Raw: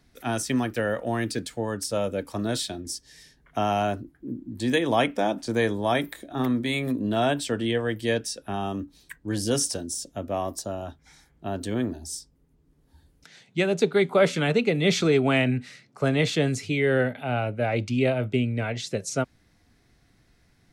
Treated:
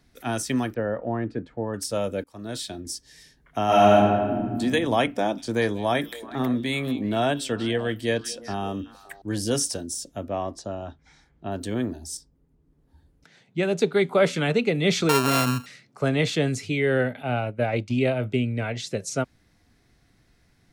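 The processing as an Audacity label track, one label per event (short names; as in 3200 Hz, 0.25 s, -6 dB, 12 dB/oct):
0.740000	1.740000	LPF 1200 Hz
2.240000	2.820000	fade in, from -22.5 dB
3.650000	4.580000	reverb throw, RT60 1.6 s, DRR -8 dB
5.100000	9.220000	delay with a stepping band-pass 0.189 s, band-pass from 3800 Hz, each repeat -1.4 oct, level -10 dB
10.280000	11.520000	air absorption 94 m
12.170000	13.630000	high shelf 2200 Hz -9.5 dB
15.090000	15.660000	sample sorter in blocks of 32 samples
17.220000	17.990000	transient shaper attack +3 dB, sustain -8 dB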